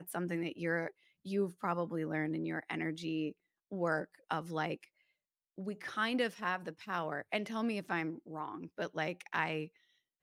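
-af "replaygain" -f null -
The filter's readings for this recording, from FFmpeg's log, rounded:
track_gain = +17.8 dB
track_peak = 0.092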